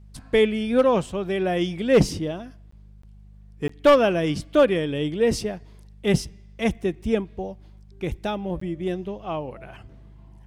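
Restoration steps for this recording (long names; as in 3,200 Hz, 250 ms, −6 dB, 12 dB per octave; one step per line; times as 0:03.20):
clipped peaks rebuilt −9.5 dBFS
hum removal 50.8 Hz, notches 4
repair the gap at 0:02.71/0:03.02/0:03.68/0:08.60, 14 ms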